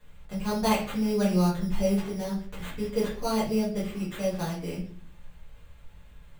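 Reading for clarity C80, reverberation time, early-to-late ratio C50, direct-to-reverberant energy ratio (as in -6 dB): 11.0 dB, 0.45 s, 6.0 dB, -10.0 dB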